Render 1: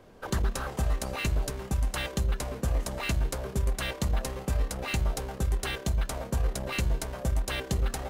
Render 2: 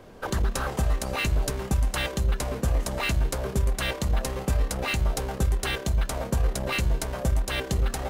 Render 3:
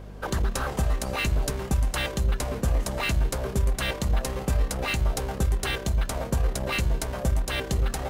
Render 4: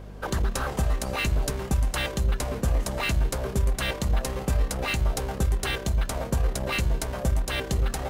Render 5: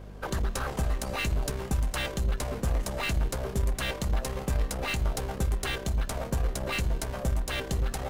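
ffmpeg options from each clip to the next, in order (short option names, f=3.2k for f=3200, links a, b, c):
-af "alimiter=limit=-21.5dB:level=0:latency=1:release=161,volume=6dB"
-af "aeval=exprs='val(0)+0.01*(sin(2*PI*50*n/s)+sin(2*PI*2*50*n/s)/2+sin(2*PI*3*50*n/s)/3+sin(2*PI*4*50*n/s)/4+sin(2*PI*5*50*n/s)/5)':c=same"
-af anull
-af "aeval=exprs='0.188*(cos(1*acos(clip(val(0)/0.188,-1,1)))-cos(1*PI/2))+0.0188*(cos(3*acos(clip(val(0)/0.188,-1,1)))-cos(3*PI/2))+0.0106*(cos(5*acos(clip(val(0)/0.188,-1,1)))-cos(5*PI/2))+0.00841*(cos(8*acos(clip(val(0)/0.188,-1,1)))-cos(8*PI/2))':c=same,volume=-2.5dB"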